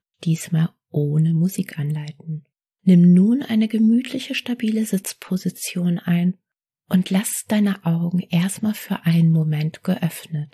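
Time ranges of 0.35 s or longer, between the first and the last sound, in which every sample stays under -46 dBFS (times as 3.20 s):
2.40–2.86 s
6.35–6.90 s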